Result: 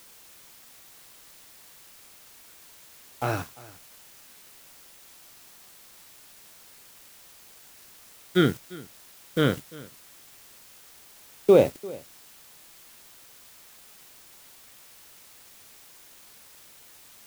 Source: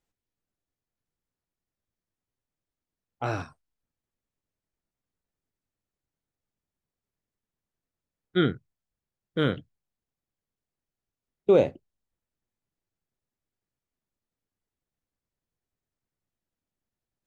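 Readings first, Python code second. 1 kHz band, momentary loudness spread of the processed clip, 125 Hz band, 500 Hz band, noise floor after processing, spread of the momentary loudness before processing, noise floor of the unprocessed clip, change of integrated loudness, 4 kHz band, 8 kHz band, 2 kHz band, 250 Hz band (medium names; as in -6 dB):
+2.5 dB, 24 LU, +2.5 dB, +2.5 dB, -52 dBFS, 16 LU, under -85 dBFS, +1.5 dB, +3.5 dB, no reading, +3.0 dB, +2.5 dB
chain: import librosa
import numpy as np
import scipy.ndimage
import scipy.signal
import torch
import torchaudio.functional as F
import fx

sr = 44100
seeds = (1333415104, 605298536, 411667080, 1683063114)

p1 = fx.quant_dither(x, sr, seeds[0], bits=6, dither='triangular')
p2 = x + F.gain(torch.from_numpy(p1), -7.5).numpy()
p3 = np.sign(p2) * np.maximum(np.abs(p2) - 10.0 ** (-42.0 / 20.0), 0.0)
y = p3 + 10.0 ** (-21.0 / 20.0) * np.pad(p3, (int(346 * sr / 1000.0), 0))[:len(p3)]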